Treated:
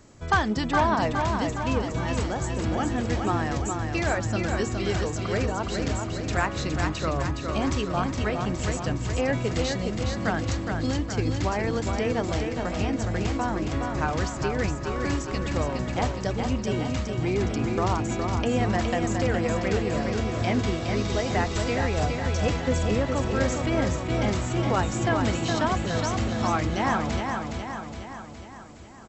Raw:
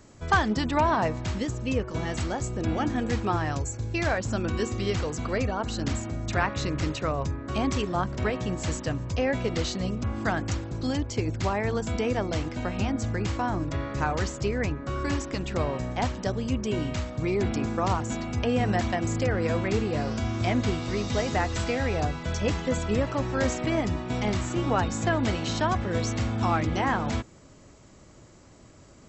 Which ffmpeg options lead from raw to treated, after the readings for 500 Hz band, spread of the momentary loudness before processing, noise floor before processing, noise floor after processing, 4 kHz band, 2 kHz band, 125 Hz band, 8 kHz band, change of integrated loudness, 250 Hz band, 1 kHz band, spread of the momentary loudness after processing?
+1.5 dB, 5 LU, −52 dBFS, −36 dBFS, +1.5 dB, +1.5 dB, +1.5 dB, +1.5 dB, +1.5 dB, +1.5 dB, +1.5 dB, 4 LU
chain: -af "aecho=1:1:415|830|1245|1660|2075|2490|2905:0.562|0.315|0.176|0.0988|0.0553|0.031|0.0173"

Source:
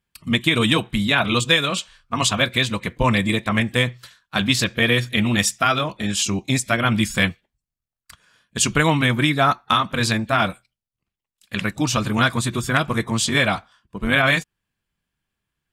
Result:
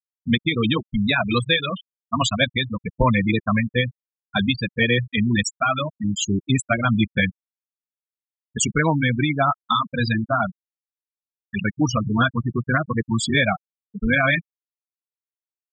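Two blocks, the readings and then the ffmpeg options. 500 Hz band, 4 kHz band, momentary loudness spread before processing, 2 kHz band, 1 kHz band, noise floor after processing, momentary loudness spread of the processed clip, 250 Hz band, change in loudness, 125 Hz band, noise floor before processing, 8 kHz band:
−1.5 dB, −4.5 dB, 7 LU, −2.0 dB, −2.0 dB, below −85 dBFS, 8 LU, 0.0 dB, −2.0 dB, 0.0 dB, below −85 dBFS, −5.5 dB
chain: -af "alimiter=limit=-7.5dB:level=0:latency=1:release=448,afftfilt=real='re*gte(hypot(re,im),0.2)':imag='im*gte(hypot(re,im),0.2)':win_size=1024:overlap=0.75,volume=2dB"

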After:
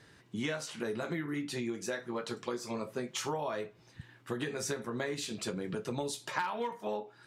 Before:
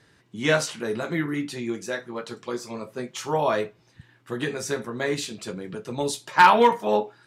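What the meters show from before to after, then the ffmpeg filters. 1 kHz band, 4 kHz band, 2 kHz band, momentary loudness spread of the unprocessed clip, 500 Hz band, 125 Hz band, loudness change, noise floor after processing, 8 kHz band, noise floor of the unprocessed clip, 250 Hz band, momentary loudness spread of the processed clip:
−17.0 dB, −9.0 dB, −13.0 dB, 18 LU, −11.5 dB, −8.0 dB, −12.5 dB, −61 dBFS, −6.5 dB, −60 dBFS, −8.0 dB, 4 LU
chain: -af "acompressor=threshold=-32dB:ratio=12"

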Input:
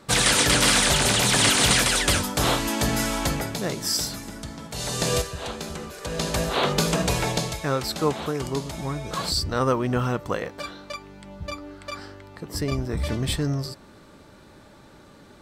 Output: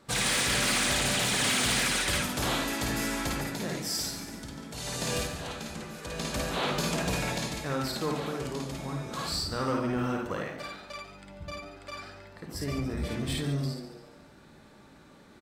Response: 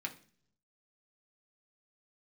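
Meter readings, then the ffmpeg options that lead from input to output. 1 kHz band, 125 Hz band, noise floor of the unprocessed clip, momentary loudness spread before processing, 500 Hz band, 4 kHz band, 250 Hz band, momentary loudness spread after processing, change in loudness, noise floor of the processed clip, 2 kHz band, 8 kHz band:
−7.0 dB, −7.0 dB, −50 dBFS, 19 LU, −7.5 dB, −7.0 dB, −5.0 dB, 17 LU, −7.0 dB, −54 dBFS, −5.0 dB, −7.5 dB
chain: -filter_complex "[0:a]asplit=2[link_01][link_02];[1:a]atrim=start_sample=2205,adelay=53[link_03];[link_02][link_03]afir=irnorm=-1:irlink=0,volume=0.5dB[link_04];[link_01][link_04]amix=inputs=2:normalize=0,asoftclip=type=tanh:threshold=-13dB,asplit=5[link_05][link_06][link_07][link_08][link_09];[link_06]adelay=142,afreqshift=110,volume=-12dB[link_10];[link_07]adelay=284,afreqshift=220,volume=-19.3dB[link_11];[link_08]adelay=426,afreqshift=330,volume=-26.7dB[link_12];[link_09]adelay=568,afreqshift=440,volume=-34dB[link_13];[link_05][link_10][link_11][link_12][link_13]amix=inputs=5:normalize=0,volume=-8dB"

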